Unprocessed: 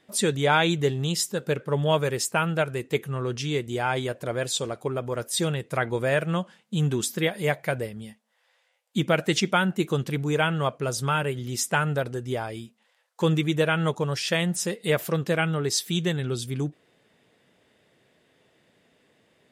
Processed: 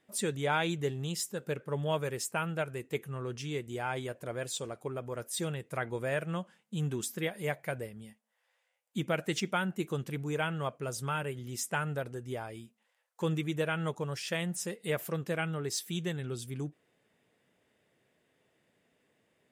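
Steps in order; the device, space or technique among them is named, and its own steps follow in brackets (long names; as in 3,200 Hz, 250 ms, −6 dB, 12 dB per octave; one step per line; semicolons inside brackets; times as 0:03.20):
exciter from parts (in parallel at −5 dB: high-pass filter 2,900 Hz 24 dB per octave + soft clipping −25.5 dBFS, distortion −11 dB + high-pass filter 4,900 Hz 6 dB per octave)
on the sum: level −9 dB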